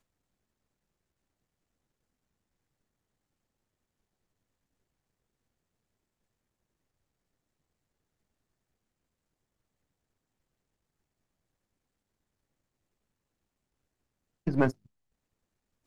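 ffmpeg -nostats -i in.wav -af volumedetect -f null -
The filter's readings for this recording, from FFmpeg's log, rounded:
mean_volume: -43.1 dB
max_volume: -9.6 dB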